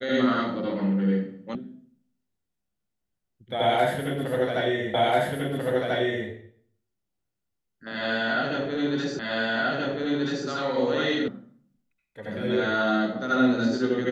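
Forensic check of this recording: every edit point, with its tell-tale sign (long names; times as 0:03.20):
0:01.55: cut off before it has died away
0:04.94: the same again, the last 1.34 s
0:09.19: the same again, the last 1.28 s
0:11.28: cut off before it has died away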